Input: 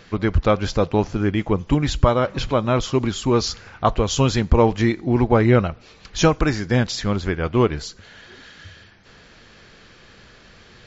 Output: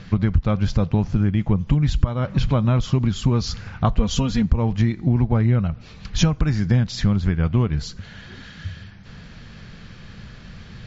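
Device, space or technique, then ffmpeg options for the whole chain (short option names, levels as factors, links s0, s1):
jukebox: -filter_complex "[0:a]lowpass=6700,lowshelf=f=250:t=q:w=1.5:g=10,acompressor=threshold=0.141:ratio=5,asettb=1/sr,asplit=3[s0][s1][s2];[s0]atrim=end=3.984[s3];[s1]atrim=start=3.98:end=4.46,asetpts=PTS-STARTPTS,afade=t=in:d=0.004:c=qsin,afade=t=out:st=0.476:d=0.004:c=qsin,aecho=1:1:4.2:0.71,atrim=end_sample=21168[s4];[s2]atrim=start=4.456[s5];[s3][s4]acrossfade=d=0.004:c1=hsin:c2=qsin[s6];[s6][s5]acrossfade=d=0.004:c1=qsin:c2=hsin,volume=1.19"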